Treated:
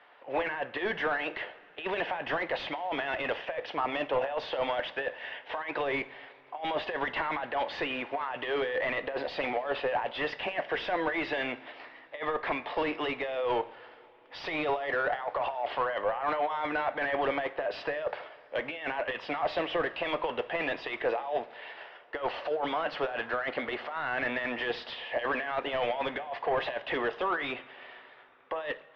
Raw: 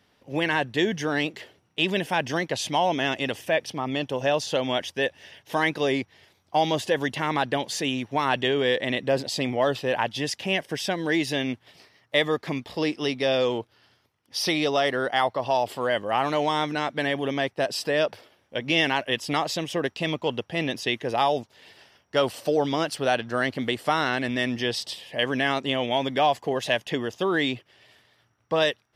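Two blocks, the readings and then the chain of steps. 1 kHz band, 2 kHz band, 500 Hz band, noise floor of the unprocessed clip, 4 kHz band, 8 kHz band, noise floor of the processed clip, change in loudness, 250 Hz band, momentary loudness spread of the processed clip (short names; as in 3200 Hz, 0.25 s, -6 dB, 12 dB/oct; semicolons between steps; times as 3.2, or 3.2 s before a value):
-5.0 dB, -4.5 dB, -6.0 dB, -67 dBFS, -11.5 dB, under -25 dB, -55 dBFS, -6.5 dB, -11.5 dB, 7 LU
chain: three-band isolator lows -19 dB, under 490 Hz, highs -21 dB, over 4900 Hz; negative-ratio compressor -31 dBFS, ratio -0.5; overdrive pedal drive 21 dB, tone 1700 Hz, clips at -13.5 dBFS; air absorption 340 m; two-slope reverb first 0.53 s, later 4.2 s, from -18 dB, DRR 10.5 dB; gain -3.5 dB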